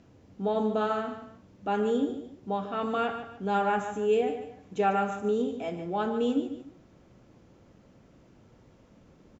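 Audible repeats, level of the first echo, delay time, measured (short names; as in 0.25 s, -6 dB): 2, -10.5 dB, 0.147 s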